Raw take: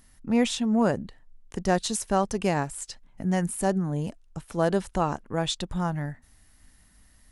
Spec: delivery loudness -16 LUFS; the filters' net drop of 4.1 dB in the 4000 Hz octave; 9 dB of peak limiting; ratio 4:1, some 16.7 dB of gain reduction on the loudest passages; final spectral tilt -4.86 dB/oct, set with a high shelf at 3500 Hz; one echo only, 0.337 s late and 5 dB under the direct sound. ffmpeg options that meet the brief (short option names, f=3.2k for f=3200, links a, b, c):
-af "highshelf=f=3.5k:g=3,equalizer=f=4k:t=o:g=-7,acompressor=threshold=-39dB:ratio=4,alimiter=level_in=8dB:limit=-24dB:level=0:latency=1,volume=-8dB,aecho=1:1:337:0.562,volume=26.5dB"